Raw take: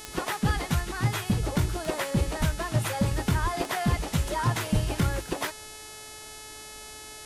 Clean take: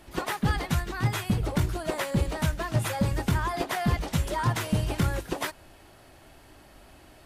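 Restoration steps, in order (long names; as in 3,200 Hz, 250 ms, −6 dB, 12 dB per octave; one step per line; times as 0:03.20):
click removal
hum removal 430.6 Hz, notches 27
high-pass at the plosives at 0:02.39/0:03.42/0:04.73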